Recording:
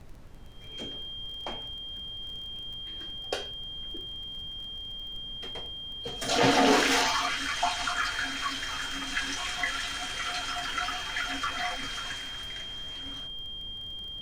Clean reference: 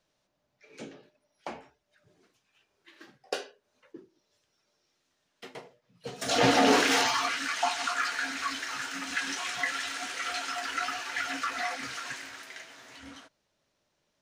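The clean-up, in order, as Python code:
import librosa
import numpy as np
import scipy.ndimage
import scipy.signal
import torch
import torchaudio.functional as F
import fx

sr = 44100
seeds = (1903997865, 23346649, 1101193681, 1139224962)

y = fx.fix_declick_ar(x, sr, threshold=6.5)
y = fx.notch(y, sr, hz=3200.0, q=30.0)
y = fx.noise_reduce(y, sr, print_start_s=0.12, print_end_s=0.62, reduce_db=30.0)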